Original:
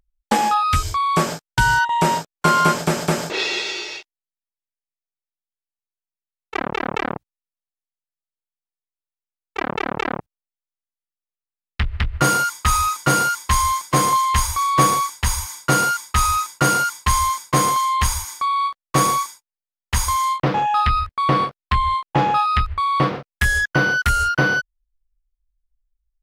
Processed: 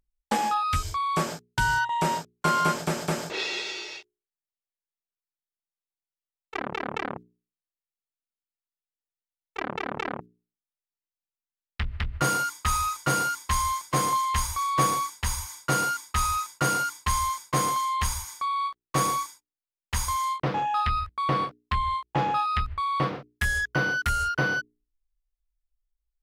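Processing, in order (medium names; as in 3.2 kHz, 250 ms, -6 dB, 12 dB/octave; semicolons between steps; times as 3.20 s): hum notches 60/120/180/240/300/360/420 Hz; trim -7.5 dB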